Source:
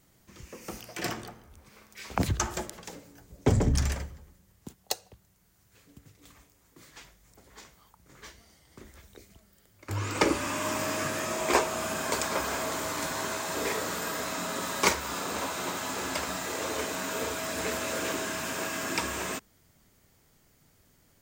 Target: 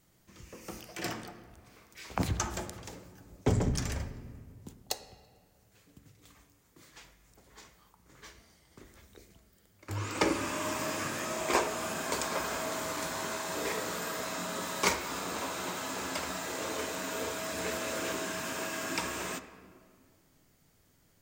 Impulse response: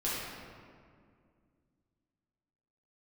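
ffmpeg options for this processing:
-filter_complex "[0:a]bandreject=frequency=70.42:width_type=h:width=4,bandreject=frequency=140.84:width_type=h:width=4,bandreject=frequency=211.26:width_type=h:width=4,bandreject=frequency=281.68:width_type=h:width=4,bandreject=frequency=352.1:width_type=h:width=4,bandreject=frequency=422.52:width_type=h:width=4,bandreject=frequency=492.94:width_type=h:width=4,bandreject=frequency=563.36:width_type=h:width=4,bandreject=frequency=633.78:width_type=h:width=4,bandreject=frequency=704.2:width_type=h:width=4,bandreject=frequency=774.62:width_type=h:width=4,bandreject=frequency=845.04:width_type=h:width=4,bandreject=frequency=915.46:width_type=h:width=4,bandreject=frequency=985.88:width_type=h:width=4,bandreject=frequency=1056.3:width_type=h:width=4,bandreject=frequency=1126.72:width_type=h:width=4,bandreject=frequency=1197.14:width_type=h:width=4,bandreject=frequency=1267.56:width_type=h:width=4,bandreject=frequency=1337.98:width_type=h:width=4,bandreject=frequency=1408.4:width_type=h:width=4,bandreject=frequency=1478.82:width_type=h:width=4,bandreject=frequency=1549.24:width_type=h:width=4,bandreject=frequency=1619.66:width_type=h:width=4,bandreject=frequency=1690.08:width_type=h:width=4,bandreject=frequency=1760.5:width_type=h:width=4,bandreject=frequency=1830.92:width_type=h:width=4,bandreject=frequency=1901.34:width_type=h:width=4,bandreject=frequency=1971.76:width_type=h:width=4,bandreject=frequency=2042.18:width_type=h:width=4,bandreject=frequency=2112.6:width_type=h:width=4,bandreject=frequency=2183.02:width_type=h:width=4,bandreject=frequency=2253.44:width_type=h:width=4,bandreject=frequency=2323.86:width_type=h:width=4,bandreject=frequency=2394.28:width_type=h:width=4,bandreject=frequency=2464.7:width_type=h:width=4,bandreject=frequency=2535.12:width_type=h:width=4,asplit=2[link_01][link_02];[link_02]lowpass=9800[link_03];[1:a]atrim=start_sample=2205[link_04];[link_03][link_04]afir=irnorm=-1:irlink=0,volume=-17.5dB[link_05];[link_01][link_05]amix=inputs=2:normalize=0,volume=-4dB"

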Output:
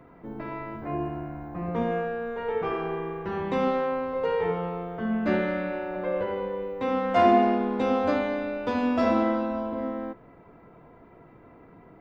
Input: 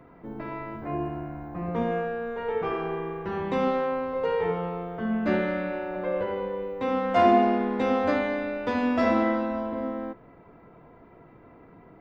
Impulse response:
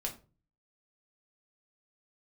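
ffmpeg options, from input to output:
-filter_complex "[0:a]asettb=1/sr,asplit=3[link_01][link_02][link_03];[link_01]atrim=end=7.544[link_04];[link_02]atrim=start=7.54:end=9.79,asetpts=PTS-STARTPTS,afade=type=in:duration=0.004:curve=qsin,afade=type=out:start_time=2.246:duration=0.004:curve=qsin,equalizer=frequency=1900:width_type=o:width=0.32:gain=-7[link_05];[link_03]atrim=start=9.786[link_06];[link_04][link_05]acrossfade=duration=0.004:curve1=hsin:curve2=qsin[link_07];[link_07][link_06]acrossfade=duration=0.004:curve1=qsin:curve2=hsin"

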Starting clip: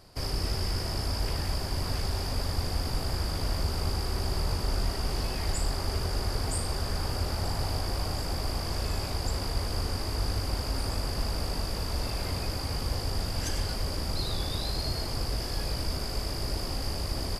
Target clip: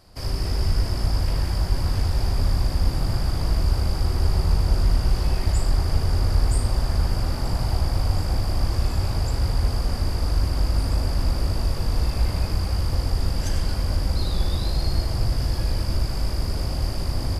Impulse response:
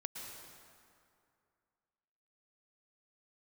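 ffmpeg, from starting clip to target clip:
-filter_complex "[0:a]bandreject=frequency=420:width=14,asplit=2[link_01][link_02];[link_02]lowpass=2200[link_03];[1:a]atrim=start_sample=2205,lowshelf=frequency=210:gain=12,adelay=75[link_04];[link_03][link_04]afir=irnorm=-1:irlink=0,volume=-0.5dB[link_05];[link_01][link_05]amix=inputs=2:normalize=0"

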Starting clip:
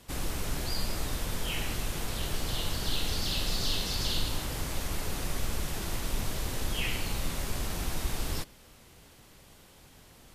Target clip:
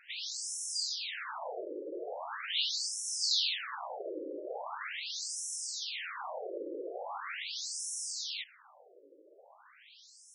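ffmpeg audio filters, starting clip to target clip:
ffmpeg -i in.wav -af "highpass=290,afftfilt=real='re*between(b*sr/1024,400*pow(7600/400,0.5+0.5*sin(2*PI*0.41*pts/sr))/1.41,400*pow(7600/400,0.5+0.5*sin(2*PI*0.41*pts/sr))*1.41)':imag='im*between(b*sr/1024,400*pow(7600/400,0.5+0.5*sin(2*PI*0.41*pts/sr))/1.41,400*pow(7600/400,0.5+0.5*sin(2*PI*0.41*pts/sr))*1.41)':win_size=1024:overlap=0.75,volume=7dB" out.wav

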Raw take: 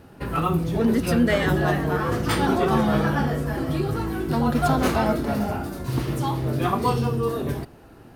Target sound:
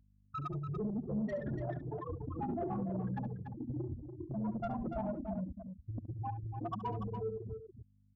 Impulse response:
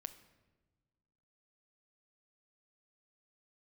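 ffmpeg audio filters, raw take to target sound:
-filter_complex "[0:a]afftfilt=real='re*gte(hypot(re,im),0.398)':imag='im*gte(hypot(re,im),0.398)':win_size=1024:overlap=0.75,acrossover=split=5100[link_01][link_02];[link_02]acompressor=threshold=-60dB:ratio=4:attack=1:release=60[link_03];[link_01][link_03]amix=inputs=2:normalize=0,afftfilt=real='re*gte(hypot(re,im),0.0501)':imag='im*gte(hypot(re,im),0.0501)':win_size=1024:overlap=0.75,highpass=frequency=93:poles=1,equalizer=frequency=410:width=1.2:gain=-5.5,afreqshift=-21,acompressor=threshold=-24dB:ratio=16,asoftclip=type=tanh:threshold=-25dB,equalizer=frequency=125:width_type=o:width=1:gain=-5,equalizer=frequency=2000:width_type=o:width=1:gain=-9,equalizer=frequency=4000:width_type=o:width=1:gain=-6,aeval=exprs='val(0)+0.000891*(sin(2*PI*50*n/s)+sin(2*PI*2*50*n/s)/2+sin(2*PI*3*50*n/s)/3+sin(2*PI*4*50*n/s)/4+sin(2*PI*5*50*n/s)/5)':channel_layout=same,asplit=2[link_04][link_05];[link_05]aecho=0:1:69.97|288.6:0.251|0.398[link_06];[link_04][link_06]amix=inputs=2:normalize=0,volume=-4.5dB"

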